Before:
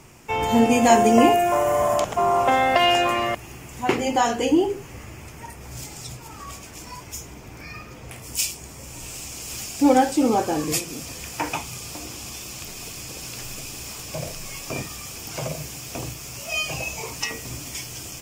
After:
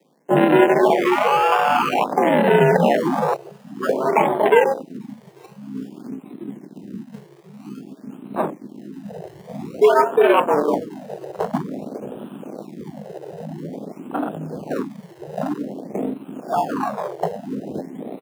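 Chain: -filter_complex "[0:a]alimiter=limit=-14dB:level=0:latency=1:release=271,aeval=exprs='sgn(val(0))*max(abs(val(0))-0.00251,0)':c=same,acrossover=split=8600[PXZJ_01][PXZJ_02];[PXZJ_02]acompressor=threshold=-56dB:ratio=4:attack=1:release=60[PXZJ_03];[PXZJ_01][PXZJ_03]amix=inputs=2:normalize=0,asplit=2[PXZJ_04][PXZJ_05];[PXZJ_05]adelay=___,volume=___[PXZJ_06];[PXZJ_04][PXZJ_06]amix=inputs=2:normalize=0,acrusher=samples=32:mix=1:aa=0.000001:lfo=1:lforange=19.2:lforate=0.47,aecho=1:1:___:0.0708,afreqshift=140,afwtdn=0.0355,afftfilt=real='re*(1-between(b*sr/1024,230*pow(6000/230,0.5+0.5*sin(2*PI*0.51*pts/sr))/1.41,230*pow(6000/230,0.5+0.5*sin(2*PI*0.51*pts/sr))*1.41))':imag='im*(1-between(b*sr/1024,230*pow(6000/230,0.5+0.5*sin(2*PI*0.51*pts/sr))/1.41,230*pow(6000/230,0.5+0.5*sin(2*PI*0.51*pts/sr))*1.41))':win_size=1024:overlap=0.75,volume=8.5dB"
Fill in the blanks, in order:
18, -9.5dB, 843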